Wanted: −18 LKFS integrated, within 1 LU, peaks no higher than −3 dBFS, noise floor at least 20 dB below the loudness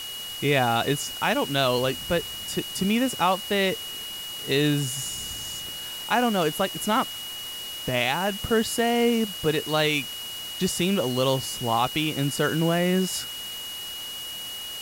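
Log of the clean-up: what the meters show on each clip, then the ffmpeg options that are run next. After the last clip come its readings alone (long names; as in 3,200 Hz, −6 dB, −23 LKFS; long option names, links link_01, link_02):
interfering tone 2,900 Hz; level of the tone −34 dBFS; background noise floor −36 dBFS; target noise floor −46 dBFS; integrated loudness −25.5 LKFS; sample peak −9.5 dBFS; target loudness −18.0 LKFS
→ -af "bandreject=frequency=2900:width=30"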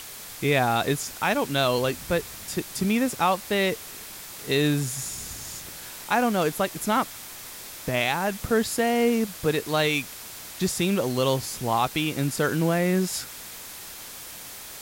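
interfering tone none found; background noise floor −41 dBFS; target noise floor −45 dBFS
→ -af "afftdn=noise_reduction=6:noise_floor=-41"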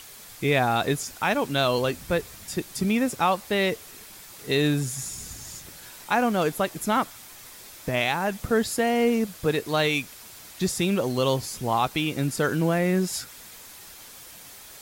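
background noise floor −45 dBFS; integrated loudness −25.0 LKFS; sample peak −10.5 dBFS; target loudness −18.0 LKFS
→ -af "volume=7dB"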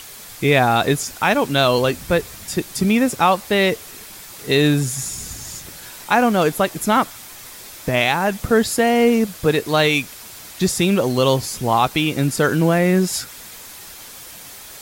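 integrated loudness −18.0 LKFS; sample peak −3.5 dBFS; background noise floor −38 dBFS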